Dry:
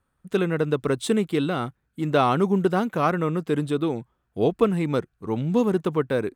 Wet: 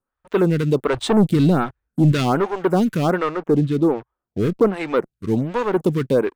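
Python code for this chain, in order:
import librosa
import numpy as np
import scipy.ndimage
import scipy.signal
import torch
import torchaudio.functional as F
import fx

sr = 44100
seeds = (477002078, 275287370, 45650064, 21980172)

y = fx.low_shelf(x, sr, hz=260.0, db=11.5, at=(0.93, 2.12))
y = fx.lowpass(y, sr, hz=2300.0, slope=12, at=(3.28, 4.73))
y = fx.leveller(y, sr, passes=3)
y = fx.stagger_phaser(y, sr, hz=1.3)
y = F.gain(torch.from_numpy(y), -1.5).numpy()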